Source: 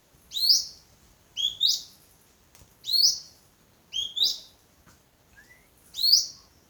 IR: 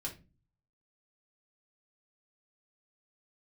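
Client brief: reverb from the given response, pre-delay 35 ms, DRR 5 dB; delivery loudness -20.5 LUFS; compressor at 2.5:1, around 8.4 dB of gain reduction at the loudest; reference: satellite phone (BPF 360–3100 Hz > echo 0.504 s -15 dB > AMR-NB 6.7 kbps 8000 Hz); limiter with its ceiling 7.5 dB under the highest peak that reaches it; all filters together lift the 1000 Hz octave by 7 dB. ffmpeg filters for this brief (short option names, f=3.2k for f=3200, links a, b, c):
-filter_complex "[0:a]equalizer=f=1k:t=o:g=9,acompressor=threshold=-27dB:ratio=2.5,alimiter=limit=-22dB:level=0:latency=1,asplit=2[a][b];[1:a]atrim=start_sample=2205,adelay=35[c];[b][c]afir=irnorm=-1:irlink=0,volume=-4.5dB[d];[a][d]amix=inputs=2:normalize=0,highpass=360,lowpass=3.1k,aecho=1:1:504:0.178,volume=22.5dB" -ar 8000 -c:a libopencore_amrnb -b:a 6700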